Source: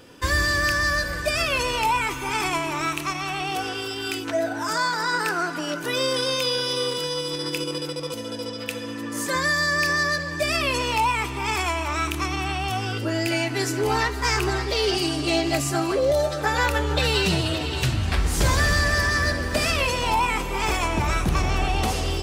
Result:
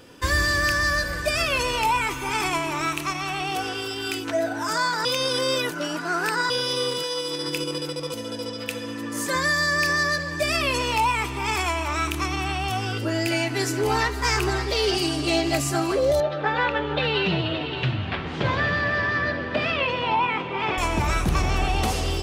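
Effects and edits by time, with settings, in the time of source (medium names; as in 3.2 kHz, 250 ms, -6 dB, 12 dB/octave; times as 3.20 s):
5.05–6.50 s: reverse
7.02–7.46 s: high-pass 410 Hz -> 140 Hz
16.20–20.78 s: Chebyshev band-pass 110–3300 Hz, order 3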